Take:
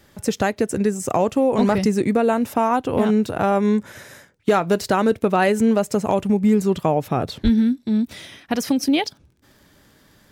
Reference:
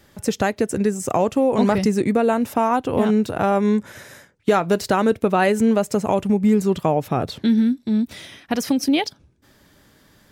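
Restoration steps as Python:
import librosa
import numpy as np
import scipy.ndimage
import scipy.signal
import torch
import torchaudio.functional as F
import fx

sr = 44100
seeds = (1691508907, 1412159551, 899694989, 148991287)

y = fx.fix_declip(x, sr, threshold_db=-8.5)
y = fx.fix_declick_ar(y, sr, threshold=6.5)
y = fx.highpass(y, sr, hz=140.0, slope=24, at=(7.43, 7.55), fade=0.02)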